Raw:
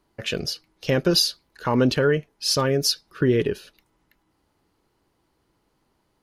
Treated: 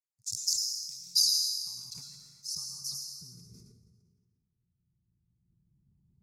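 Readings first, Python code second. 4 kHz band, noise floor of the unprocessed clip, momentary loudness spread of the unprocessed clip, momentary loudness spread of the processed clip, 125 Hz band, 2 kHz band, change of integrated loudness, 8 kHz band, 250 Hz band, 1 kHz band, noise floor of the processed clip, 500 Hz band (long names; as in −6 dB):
−5.0 dB, −70 dBFS, 11 LU, 19 LU, −28.5 dB, below −40 dB, −7.0 dB, 0.0 dB, −36.5 dB, below −35 dB, −80 dBFS, below −40 dB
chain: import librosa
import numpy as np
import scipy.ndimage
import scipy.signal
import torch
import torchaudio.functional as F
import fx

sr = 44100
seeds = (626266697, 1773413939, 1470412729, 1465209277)

y = fx.wiener(x, sr, points=15)
y = fx.recorder_agc(y, sr, target_db=-16.5, rise_db_per_s=8.1, max_gain_db=30)
y = scipy.signal.sosfilt(scipy.signal.cheby2(4, 40, [270.0, 3200.0], 'bandstop', fs=sr, output='sos'), y)
y = fx.hpss(y, sr, part='harmonic', gain_db=-16)
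y = fx.high_shelf(y, sr, hz=7100.0, db=11.0)
y = fx.filter_sweep_bandpass(y, sr, from_hz=6000.0, to_hz=340.0, start_s=0.51, end_s=4.46, q=1.4)
y = fx.rev_plate(y, sr, seeds[0], rt60_s=1.9, hf_ratio=0.65, predelay_ms=90, drr_db=-0.5)
y = fx.sustainer(y, sr, db_per_s=37.0)
y = y * 10.0 ** (4.0 / 20.0)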